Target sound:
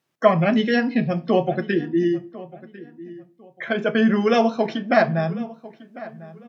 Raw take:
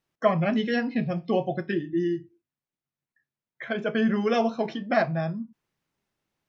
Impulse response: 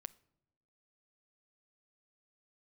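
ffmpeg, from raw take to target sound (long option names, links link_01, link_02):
-filter_complex "[0:a]highpass=120,asplit=2[link_01][link_02];[link_02]adelay=1049,lowpass=frequency=2300:poles=1,volume=-18dB,asplit=2[link_03][link_04];[link_04]adelay=1049,lowpass=frequency=2300:poles=1,volume=0.28[link_05];[link_01][link_03][link_05]amix=inputs=3:normalize=0,asplit=2[link_06][link_07];[1:a]atrim=start_sample=2205,asetrate=37926,aresample=44100[link_08];[link_07][link_08]afir=irnorm=-1:irlink=0,volume=4.5dB[link_09];[link_06][link_09]amix=inputs=2:normalize=0"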